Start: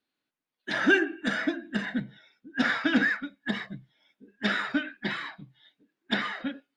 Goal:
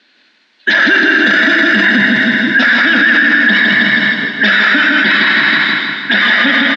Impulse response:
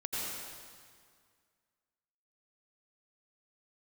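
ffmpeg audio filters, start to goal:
-filter_complex "[0:a]lowshelf=frequency=310:gain=-12,acompressor=threshold=-31dB:ratio=6,highpass=210,equalizer=frequency=210:width_type=q:width=4:gain=5,equalizer=frequency=440:width_type=q:width=4:gain=-6,equalizer=frequency=790:width_type=q:width=4:gain=-7,equalizer=frequency=1200:width_type=q:width=4:gain=-7,equalizer=frequency=1700:width_type=q:width=4:gain=5,lowpass=frequency=5000:width=0.5412,lowpass=frequency=5000:width=1.3066,aecho=1:1:159|318|477|636|795|954|1113:0.631|0.334|0.177|0.0939|0.0498|0.0264|0.014,asplit=2[link_01][link_02];[1:a]atrim=start_sample=2205,highshelf=frequency=7200:gain=9[link_03];[link_02][link_03]afir=irnorm=-1:irlink=0,volume=-9dB[link_04];[link_01][link_04]amix=inputs=2:normalize=0,alimiter=level_in=33dB:limit=-1dB:release=50:level=0:latency=1,volume=-1dB"

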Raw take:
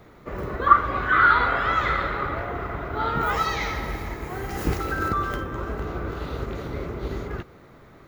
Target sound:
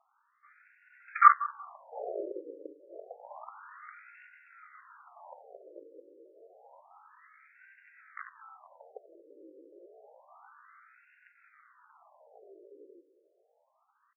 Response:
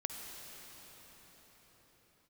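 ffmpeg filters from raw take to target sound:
-filter_complex "[0:a]atempo=0.57,aeval=exprs='0.794*(cos(1*acos(clip(val(0)/0.794,-1,1)))-cos(1*PI/2))+0.2*(cos(5*acos(clip(val(0)/0.794,-1,1)))-cos(5*PI/2))+0.282*(cos(7*acos(clip(val(0)/0.794,-1,1)))-cos(7*PI/2))':channel_layout=same,asplit=2[link_01][link_02];[link_02]adelay=185,lowpass=frequency=1400:poles=1,volume=-18.5dB,asplit=2[link_03][link_04];[link_04]adelay=185,lowpass=frequency=1400:poles=1,volume=0.24[link_05];[link_03][link_05]amix=inputs=2:normalize=0[link_06];[link_01][link_06]amix=inputs=2:normalize=0,afftfilt=real='re*between(b*sr/1024,400*pow(2000/400,0.5+0.5*sin(2*PI*0.29*pts/sr))/1.41,400*pow(2000/400,0.5+0.5*sin(2*PI*0.29*pts/sr))*1.41)':imag='im*between(b*sr/1024,400*pow(2000/400,0.5+0.5*sin(2*PI*0.29*pts/sr))/1.41,400*pow(2000/400,0.5+0.5*sin(2*PI*0.29*pts/sr))*1.41)':win_size=1024:overlap=0.75,volume=-2dB"

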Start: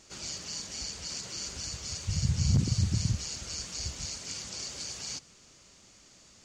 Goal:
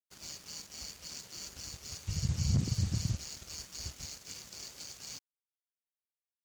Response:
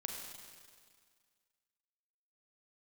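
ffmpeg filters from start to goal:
-af "acontrast=31,aeval=exprs='sgn(val(0))*max(abs(val(0))-0.0119,0)':channel_layout=same,volume=-8.5dB"

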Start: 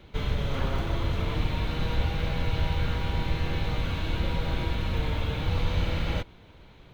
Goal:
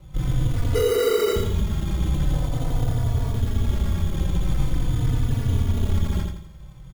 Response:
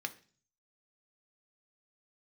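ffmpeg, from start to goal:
-filter_complex "[0:a]lowshelf=frequency=200:width_type=q:width=1.5:gain=11.5,asettb=1/sr,asplit=3[link_01][link_02][link_03];[link_01]atrim=end=0.744[link_04];[link_02]atrim=start=0.74:end=1.36,asetpts=PTS-STARTPTS,afade=type=in:duration=0.004:curve=qsin,afade=type=out:start_time=0.616:duration=0.004:curve=qsin,lowpass=frequency=3300:width_type=q:width=0.5098,lowpass=frequency=3300:width_type=q:width=0.6013,lowpass=frequency=3300:width_type=q:width=0.9,lowpass=frequency=3300:width_type=q:width=2.563,afreqshift=-3900[link_05];[link_03]atrim=start=1.356[link_06];[link_04][link_05]acrossfade=duration=0.004:curve1=hsin:curve2=qsin[link_07];[link_07][link_06]acrossfade=duration=0.004:curve1=qsin:curve2=hsin,acrusher=samples=13:mix=1:aa=0.000001,asoftclip=type=hard:threshold=-17.5dB,asettb=1/sr,asplit=3[link_08][link_09][link_10];[link_08]atrim=end=2.334[link_11];[link_09]atrim=start=2.33:end=3.33,asetpts=PTS-STARTPTS,afade=type=in:duration=0.004:curve=qsin,afade=type=out:start_time=0.996:duration=0.004:curve=qsin,equalizer=frequency=250:width_type=o:width=0.67:gain=-5,equalizer=frequency=630:width_type=o:width=0.67:gain=8,equalizer=frequency=2500:width_type=o:width=0.67:gain=-4[link_12];[link_10]atrim=start=3.326[link_13];[link_11][link_12]acrossfade=duration=0.004:curve1=hsin:curve2=qsin[link_14];[link_14][link_13]acrossfade=duration=0.004:curve1=qsin:curve2=hsin,asplit=2[link_15][link_16];[link_16]aecho=0:1:84|168|252|336|420:0.631|0.246|0.096|0.0374|0.0146[link_17];[link_15][link_17]amix=inputs=2:normalize=0,asplit=2[link_18][link_19];[link_19]adelay=3.4,afreqshift=-0.44[link_20];[link_18][link_20]amix=inputs=2:normalize=1"

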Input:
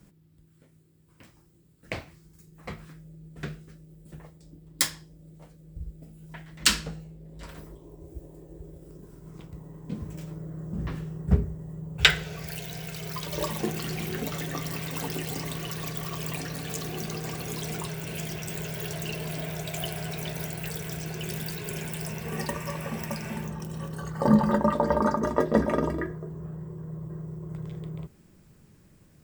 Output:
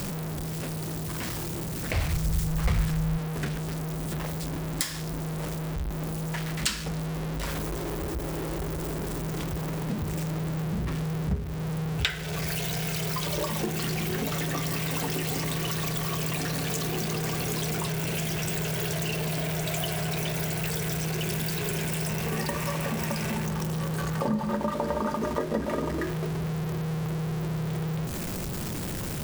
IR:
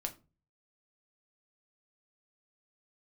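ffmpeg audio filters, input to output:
-filter_complex "[0:a]aeval=exprs='val(0)+0.5*0.0376*sgn(val(0))':channel_layout=same,acompressor=threshold=-29dB:ratio=3,asplit=3[link_01][link_02][link_03];[link_01]afade=type=out:start_time=1.93:duration=0.02[link_04];[link_02]asubboost=boost=8.5:cutoff=110,afade=type=in:start_time=1.93:duration=0.02,afade=type=out:start_time=3.17:duration=0.02[link_05];[link_03]afade=type=in:start_time=3.17:duration=0.02[link_06];[link_04][link_05][link_06]amix=inputs=3:normalize=0,volume=1.5dB"

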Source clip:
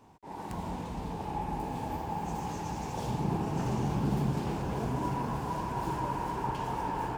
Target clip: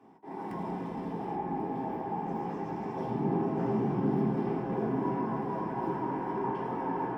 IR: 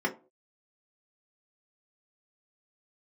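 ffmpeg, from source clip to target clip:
-filter_complex "[0:a]asetnsamples=nb_out_samples=441:pad=0,asendcmd='1.35 equalizer g -10.5',equalizer=frequency=10000:width=0.34:gain=-2[link_01];[1:a]atrim=start_sample=2205[link_02];[link_01][link_02]afir=irnorm=-1:irlink=0,volume=-9dB"

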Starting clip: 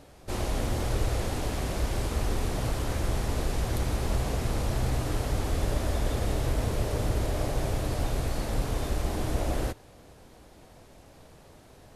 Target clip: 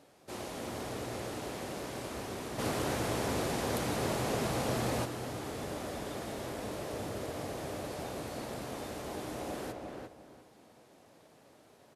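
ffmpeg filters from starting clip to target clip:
ffmpeg -i in.wav -filter_complex "[0:a]highpass=180,asplit=2[link_01][link_02];[link_02]adelay=350,lowpass=frequency=2200:poles=1,volume=-3dB,asplit=2[link_03][link_04];[link_04]adelay=350,lowpass=frequency=2200:poles=1,volume=0.26,asplit=2[link_05][link_06];[link_06]adelay=350,lowpass=frequency=2200:poles=1,volume=0.26,asplit=2[link_07][link_08];[link_08]adelay=350,lowpass=frequency=2200:poles=1,volume=0.26[link_09];[link_01][link_03][link_05][link_07][link_09]amix=inputs=5:normalize=0,asplit=3[link_10][link_11][link_12];[link_10]afade=type=out:start_time=2.58:duration=0.02[link_13];[link_11]acontrast=83,afade=type=in:start_time=2.58:duration=0.02,afade=type=out:start_time=5.04:duration=0.02[link_14];[link_12]afade=type=in:start_time=5.04:duration=0.02[link_15];[link_13][link_14][link_15]amix=inputs=3:normalize=0,volume=-7dB" out.wav

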